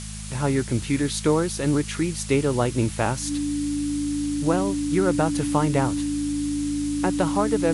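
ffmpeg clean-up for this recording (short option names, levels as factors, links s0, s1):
-af "bandreject=f=52.8:t=h:w=4,bandreject=f=105.6:t=h:w=4,bandreject=f=158.4:t=h:w=4,bandreject=f=211.2:t=h:w=4,bandreject=f=290:w=30,afftdn=nr=30:nf=-32"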